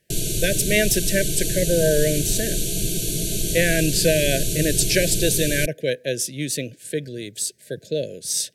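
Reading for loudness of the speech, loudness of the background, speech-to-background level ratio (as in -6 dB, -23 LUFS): -23.0 LUFS, -24.0 LUFS, 1.0 dB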